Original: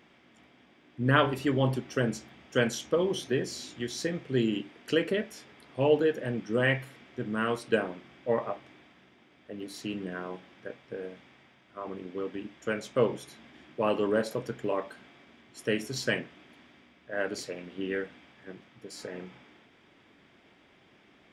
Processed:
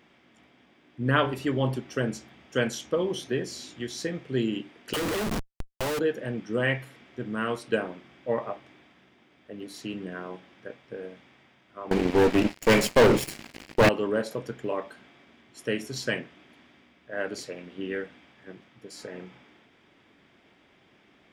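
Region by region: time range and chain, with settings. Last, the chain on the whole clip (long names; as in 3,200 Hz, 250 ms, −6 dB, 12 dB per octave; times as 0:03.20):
0:04.93–0:05.99: all-pass dispersion lows, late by 43 ms, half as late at 740 Hz + comparator with hysteresis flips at −40.5 dBFS
0:11.91–0:13.89: lower of the sound and its delayed copy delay 0.4 ms + leveller curve on the samples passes 5
whole clip: no processing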